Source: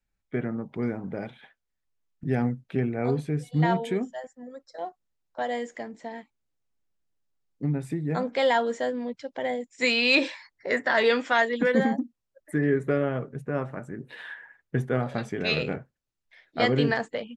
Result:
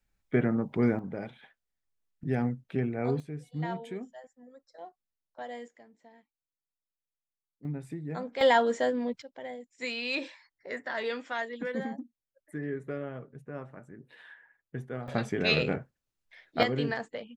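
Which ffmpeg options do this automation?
-af "asetnsamples=n=441:p=0,asendcmd='0.99 volume volume -3.5dB;3.2 volume volume -11dB;5.68 volume volume -19dB;7.65 volume volume -8.5dB;8.41 volume volume 0.5dB;9.22 volume volume -11.5dB;15.08 volume volume 0.5dB;16.63 volume volume -7dB',volume=1.5"

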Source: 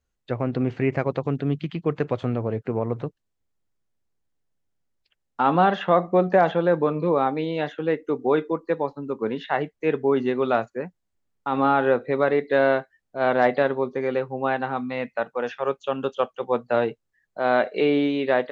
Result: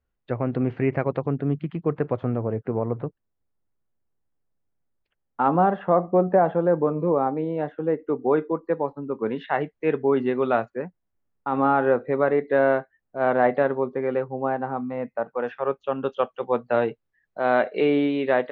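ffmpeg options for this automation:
-af "asetnsamples=n=441:p=0,asendcmd='1.26 lowpass f 1600;5.48 lowpass f 1100;7.99 lowpass f 1600;9.14 lowpass f 2700;10.82 lowpass f 1800;14.24 lowpass f 1100;15.28 lowpass f 1900;16.05 lowpass f 3000',lowpass=2300"

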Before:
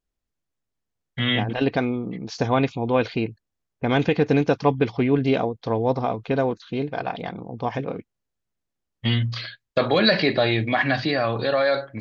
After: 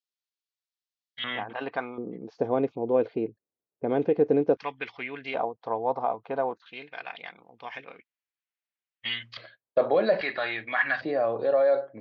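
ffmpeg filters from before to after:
-af "asetnsamples=n=441:p=0,asendcmd='1.24 bandpass f 1100;1.98 bandpass f 440;4.57 bandpass f 2100;5.34 bandpass f 850;6.66 bandpass f 2300;9.37 bandpass f 590;10.21 bandpass f 1500;11.01 bandpass f 550',bandpass=f=4100:t=q:w=1.7:csg=0"

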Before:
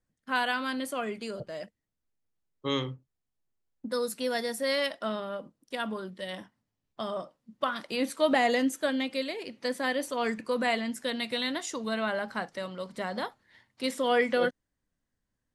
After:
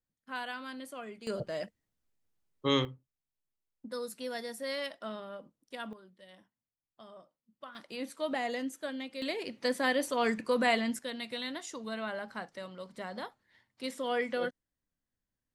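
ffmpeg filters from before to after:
-af "asetnsamples=n=441:p=0,asendcmd='1.27 volume volume 2dB;2.85 volume volume -8dB;5.93 volume volume -18dB;7.75 volume volume -9.5dB;9.22 volume volume 0.5dB;10.99 volume volume -7dB',volume=0.299"

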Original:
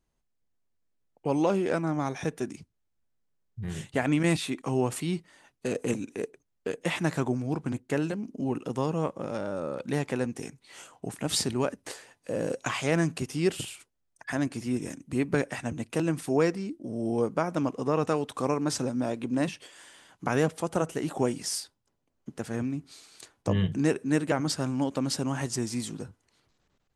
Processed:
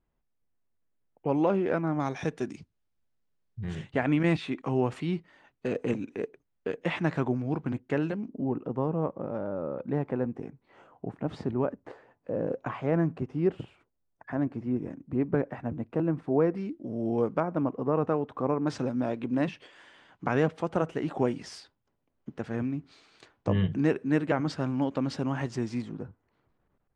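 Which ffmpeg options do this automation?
-af "asetnsamples=n=441:p=0,asendcmd='2 lowpass f 4900;3.75 lowpass f 2800;8.28 lowpass f 1100;16.55 lowpass f 2700;17.4 lowpass f 1300;18.67 lowpass f 2900;25.82 lowpass f 1500',lowpass=2300"

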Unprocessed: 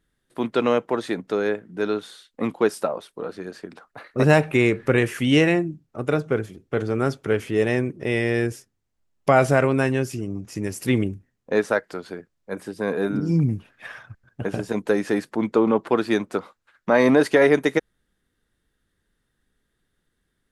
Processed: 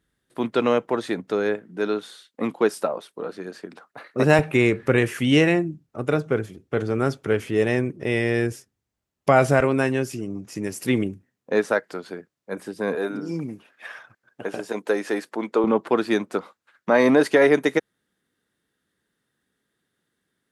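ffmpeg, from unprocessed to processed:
-af "asetnsamples=n=441:p=0,asendcmd='1.56 highpass f 150;4.39 highpass f 49;9.6 highpass f 140;12.95 highpass f 340;15.64 highpass f 150',highpass=48"

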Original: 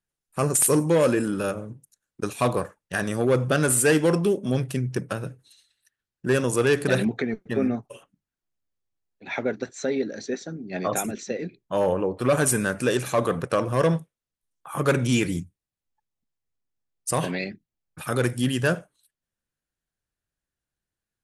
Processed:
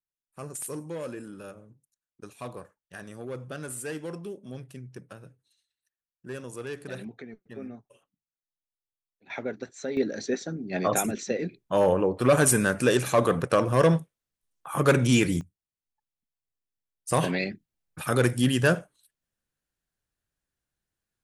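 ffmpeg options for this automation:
-af "asetnsamples=n=441:p=0,asendcmd='9.3 volume volume -6.5dB;9.97 volume volume 1dB;15.41 volume volume -8dB;17.11 volume volume 1dB',volume=0.158"

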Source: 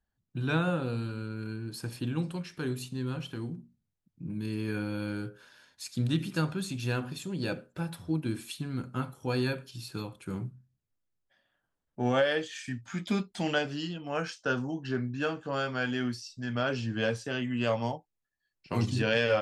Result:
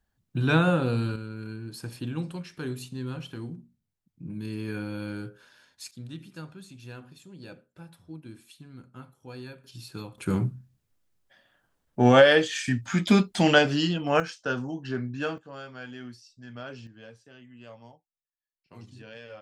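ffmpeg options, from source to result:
-af "asetnsamples=n=441:p=0,asendcmd='1.16 volume volume -0.5dB;5.91 volume volume -12dB;9.64 volume volume -1.5dB;10.18 volume volume 10dB;14.2 volume volume 0.5dB;15.38 volume volume -10dB;16.87 volume volume -18.5dB',volume=2.11"

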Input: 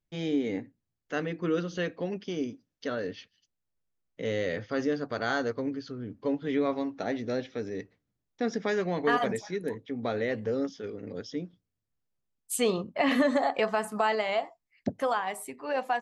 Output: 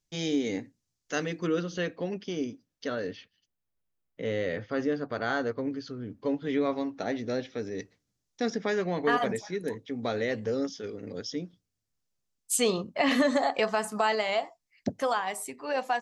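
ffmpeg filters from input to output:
-af "asetnsamples=n=441:p=0,asendcmd='1.47 equalizer g 3;3.17 equalizer g -5.5;5.71 equalizer g 3;7.78 equalizer g 12.5;8.5 equalizer g 1;9.59 equalizer g 8.5',equalizer=f=6000:t=o:w=1.3:g=14.5"

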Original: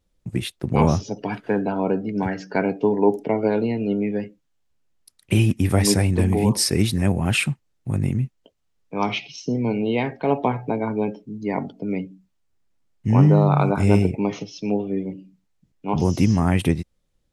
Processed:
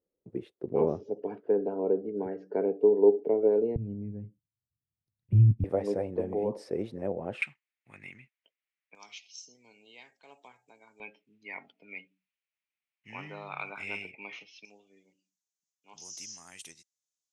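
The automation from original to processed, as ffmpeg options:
-af "asetnsamples=n=441:p=0,asendcmd='3.76 bandpass f 110;5.64 bandpass f 520;7.42 bandpass f 2200;8.95 bandpass f 7300;11 bandpass f 2400;14.65 bandpass f 6500',bandpass=f=430:t=q:w=3.7:csg=0"

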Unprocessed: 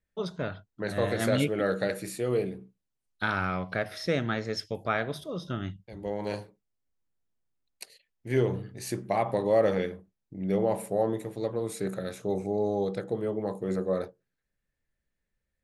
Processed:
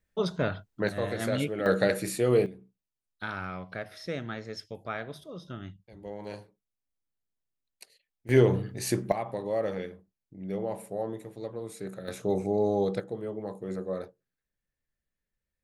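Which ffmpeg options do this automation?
-af "asetnsamples=n=441:p=0,asendcmd='0.89 volume volume -3.5dB;1.66 volume volume 4.5dB;2.46 volume volume -7dB;8.29 volume volume 5dB;9.12 volume volume -6.5dB;12.08 volume volume 2dB;13 volume volume -5dB',volume=1.68"

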